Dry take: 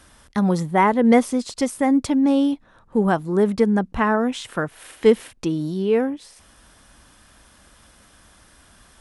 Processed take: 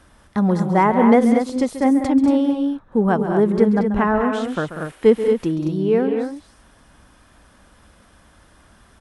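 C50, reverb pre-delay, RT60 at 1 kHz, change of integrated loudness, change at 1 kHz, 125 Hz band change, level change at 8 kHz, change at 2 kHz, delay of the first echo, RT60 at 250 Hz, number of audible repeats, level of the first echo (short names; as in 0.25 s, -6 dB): none, none, none, +2.5 dB, +1.5 dB, +3.0 dB, n/a, -0.5 dB, 0.136 s, none, 3, -12.0 dB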